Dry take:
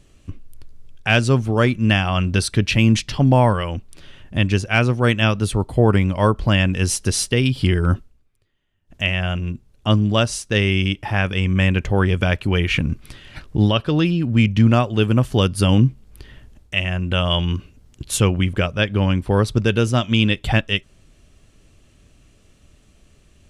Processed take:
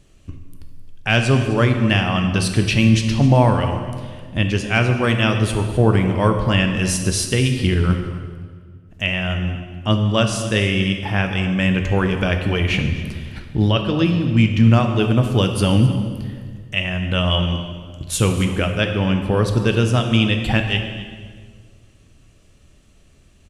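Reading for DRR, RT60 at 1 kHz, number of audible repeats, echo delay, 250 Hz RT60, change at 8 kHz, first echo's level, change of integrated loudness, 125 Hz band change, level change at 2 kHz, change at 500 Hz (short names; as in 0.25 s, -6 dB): 4.5 dB, 1.6 s, 1, 0.261 s, 2.2 s, 0.0 dB, -16.5 dB, +0.5 dB, +0.5 dB, +0.5 dB, +0.5 dB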